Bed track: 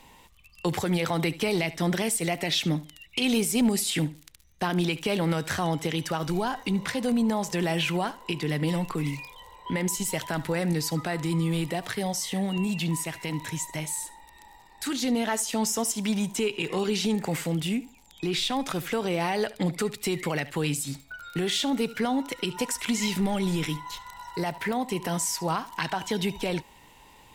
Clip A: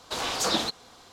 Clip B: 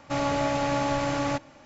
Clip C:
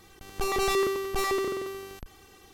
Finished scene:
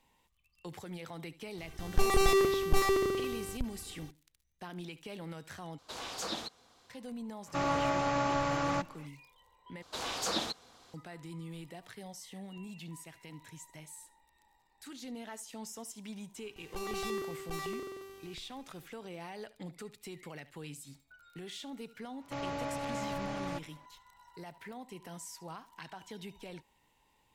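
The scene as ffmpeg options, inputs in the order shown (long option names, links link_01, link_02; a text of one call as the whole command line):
ffmpeg -i bed.wav -i cue0.wav -i cue1.wav -i cue2.wav -filter_complex "[3:a]asplit=2[link_01][link_02];[1:a]asplit=2[link_03][link_04];[2:a]asplit=2[link_05][link_06];[0:a]volume=-18dB[link_07];[link_01]lowshelf=frequency=170:gain=10.5[link_08];[link_05]equalizer=frequency=1200:width=2.1:gain=6[link_09];[link_06]lowpass=6500[link_10];[link_07]asplit=3[link_11][link_12][link_13];[link_11]atrim=end=5.784[link_14];[link_03]atrim=end=1.12,asetpts=PTS-STARTPTS,volume=-12dB[link_15];[link_12]atrim=start=6.896:end=9.824[link_16];[link_04]atrim=end=1.12,asetpts=PTS-STARTPTS,volume=-7.5dB[link_17];[link_13]atrim=start=10.936[link_18];[link_08]atrim=end=2.53,asetpts=PTS-STARTPTS,volume=-2dB,afade=type=in:duration=0.004:curve=hsin,afade=type=out:start_time=2.526:duration=0.004:curve=hsin,adelay=1580[link_19];[link_09]atrim=end=1.65,asetpts=PTS-STARTPTS,volume=-6dB,afade=type=in:duration=0.05,afade=type=out:start_time=1.6:duration=0.05,adelay=7440[link_20];[link_02]atrim=end=2.53,asetpts=PTS-STARTPTS,volume=-12dB,afade=type=in:duration=0.004:curve=hsin,afade=type=out:start_time=2.526:duration=0.004:curve=hsin,adelay=16350[link_21];[link_10]atrim=end=1.65,asetpts=PTS-STARTPTS,volume=-11.5dB,afade=type=in:duration=0.004:curve=hsin,afade=type=out:start_time=1.646:duration=0.004:curve=hsin,adelay=22210[link_22];[link_14][link_15]acrossfade=duration=0.004:curve1=hsin:curve2=hsin[link_23];[link_23][link_16]acrossfade=duration=0.004:curve1=hsin:curve2=hsin[link_24];[link_24][link_17]acrossfade=duration=0.004:curve1=hsin:curve2=hsin[link_25];[link_25][link_18]acrossfade=duration=0.004:curve1=hsin:curve2=hsin[link_26];[link_26][link_19][link_20][link_21][link_22]amix=inputs=5:normalize=0" out.wav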